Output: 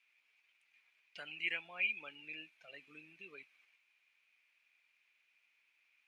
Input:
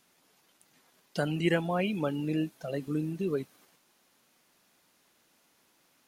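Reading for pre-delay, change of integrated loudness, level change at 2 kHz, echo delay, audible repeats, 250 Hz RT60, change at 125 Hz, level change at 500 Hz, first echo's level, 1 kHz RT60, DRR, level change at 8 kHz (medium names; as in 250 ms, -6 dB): no reverb, -8.0 dB, -1.0 dB, no echo, no echo, no reverb, -36.0 dB, -26.0 dB, no echo, no reverb, no reverb, under -20 dB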